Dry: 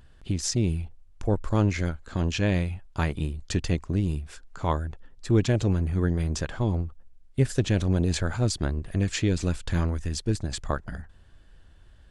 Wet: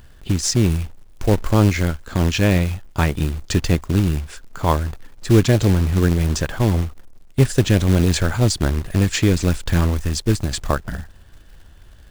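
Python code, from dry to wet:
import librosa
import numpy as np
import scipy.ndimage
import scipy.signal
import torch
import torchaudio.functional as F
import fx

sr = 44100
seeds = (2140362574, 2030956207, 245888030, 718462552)

y = fx.quant_float(x, sr, bits=2)
y = y * librosa.db_to_amplitude(8.0)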